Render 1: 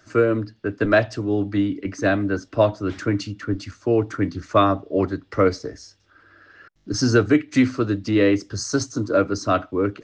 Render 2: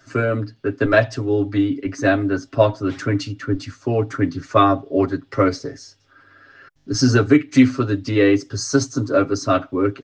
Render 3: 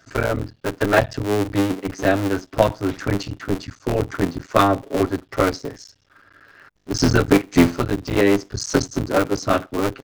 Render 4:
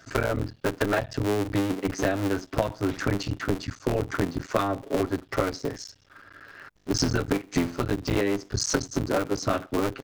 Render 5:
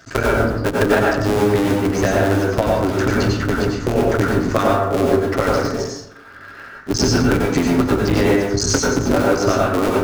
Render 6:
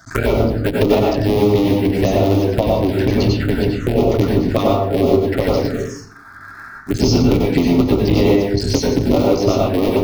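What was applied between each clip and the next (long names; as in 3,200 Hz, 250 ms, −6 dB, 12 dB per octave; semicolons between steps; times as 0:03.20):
comb filter 7.4 ms, depth 87%
sub-harmonics by changed cycles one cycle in 3, muted
downward compressor 10 to 1, threshold −23 dBFS, peak gain reduction 15.5 dB; level +2 dB
dense smooth reverb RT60 0.83 s, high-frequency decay 0.45×, pre-delay 80 ms, DRR −2.5 dB; level +5.5 dB
phaser swept by the level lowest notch 450 Hz, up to 1,600 Hz, full sweep at −12.5 dBFS; level +3 dB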